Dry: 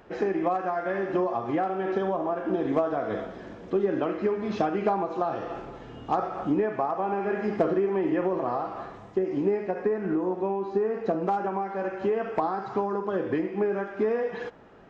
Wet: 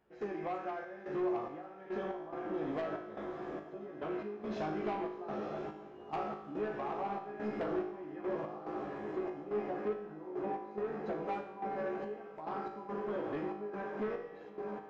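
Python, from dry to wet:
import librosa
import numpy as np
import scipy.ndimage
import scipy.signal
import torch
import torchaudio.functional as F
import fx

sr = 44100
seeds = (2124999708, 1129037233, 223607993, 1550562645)

y = fx.doubler(x, sr, ms=14.0, db=-4.5)
y = fx.echo_diffused(y, sr, ms=942, feedback_pct=77, wet_db=-8.5)
y = fx.step_gate(y, sr, bpm=71, pattern='.xxx.xx..x', floor_db=-12.0, edge_ms=4.5)
y = 10.0 ** (-20.5 / 20.0) * np.tanh(y / 10.0 ** (-20.5 / 20.0))
y = fx.comb_fb(y, sr, f0_hz=52.0, decay_s=0.82, harmonics='all', damping=0.0, mix_pct=80)
y = y * librosa.db_to_amplitude(-1.0)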